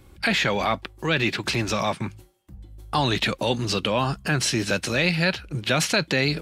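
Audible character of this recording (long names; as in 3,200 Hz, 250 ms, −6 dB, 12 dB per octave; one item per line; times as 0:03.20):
background noise floor −52 dBFS
spectral slope −4.0 dB per octave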